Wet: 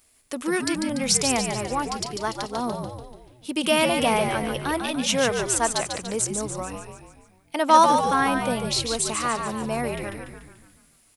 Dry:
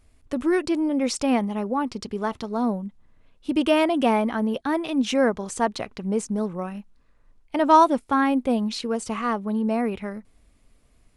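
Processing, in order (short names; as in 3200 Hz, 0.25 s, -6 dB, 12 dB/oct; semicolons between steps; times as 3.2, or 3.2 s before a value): RIAA curve recording; on a send: frequency-shifting echo 0.145 s, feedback 53%, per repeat -73 Hz, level -5.5 dB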